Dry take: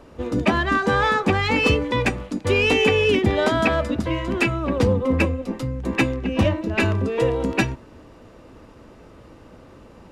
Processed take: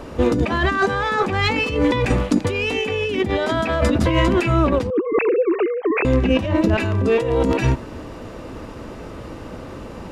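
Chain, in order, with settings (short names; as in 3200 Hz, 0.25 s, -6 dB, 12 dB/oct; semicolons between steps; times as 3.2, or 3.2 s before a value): 4.9–6.05 sine-wave speech; negative-ratio compressor -26 dBFS, ratio -1; gain +7 dB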